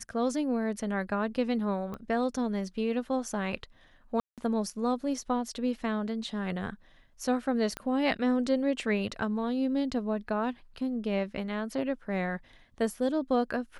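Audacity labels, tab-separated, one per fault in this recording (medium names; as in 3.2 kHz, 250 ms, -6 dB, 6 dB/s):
1.940000	1.940000	pop -26 dBFS
4.200000	4.380000	dropout 177 ms
7.770000	7.770000	pop -20 dBFS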